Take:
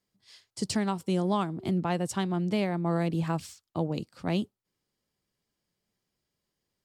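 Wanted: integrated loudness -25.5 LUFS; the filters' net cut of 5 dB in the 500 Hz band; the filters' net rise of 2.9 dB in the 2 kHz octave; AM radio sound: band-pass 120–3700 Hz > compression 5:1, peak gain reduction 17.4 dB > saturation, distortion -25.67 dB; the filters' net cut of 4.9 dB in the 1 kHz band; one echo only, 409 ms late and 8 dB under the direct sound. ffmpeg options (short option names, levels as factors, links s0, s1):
-af "highpass=120,lowpass=3700,equalizer=f=500:t=o:g=-6,equalizer=f=1000:t=o:g=-5.5,equalizer=f=2000:t=o:g=6,aecho=1:1:409:0.398,acompressor=threshold=0.00631:ratio=5,asoftclip=threshold=0.02,volume=11.9"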